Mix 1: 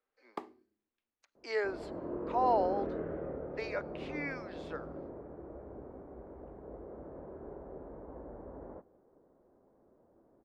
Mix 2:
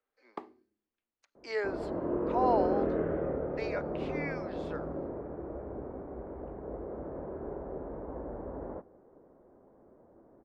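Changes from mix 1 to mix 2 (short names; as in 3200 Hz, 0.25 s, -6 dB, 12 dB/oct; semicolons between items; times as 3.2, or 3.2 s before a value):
first sound: add LPF 2900 Hz 6 dB/oct; second sound +7.0 dB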